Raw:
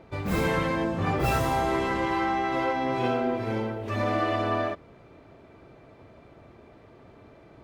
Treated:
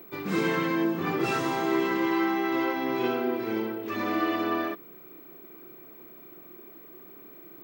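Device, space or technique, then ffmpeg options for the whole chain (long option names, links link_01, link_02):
old television with a line whistle: -af "highpass=frequency=170:width=0.5412,highpass=frequency=170:width=1.3066,equalizer=frequency=240:width_type=q:width=4:gain=-3,equalizer=frequency=350:width_type=q:width=4:gain=7,equalizer=frequency=580:width_type=q:width=4:gain=-10,equalizer=frequency=820:width_type=q:width=4:gain=-5,equalizer=frequency=7700:width_type=q:width=4:gain=-3,lowpass=frequency=8500:width=0.5412,lowpass=frequency=8500:width=1.3066,aeval=exprs='val(0)+0.00447*sin(2*PI*15734*n/s)':channel_layout=same"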